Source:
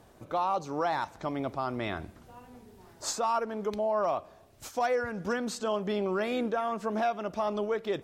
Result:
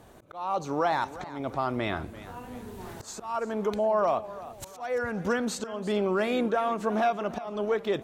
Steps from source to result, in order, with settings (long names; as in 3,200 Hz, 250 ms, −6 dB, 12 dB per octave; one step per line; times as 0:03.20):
camcorder AGC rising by 11 dB per second
parametric band 5,100 Hz −6 dB 0.21 octaves
volume swells 299 ms
feedback echo with a swinging delay time 341 ms, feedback 40%, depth 108 cents, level −16 dB
level +3.5 dB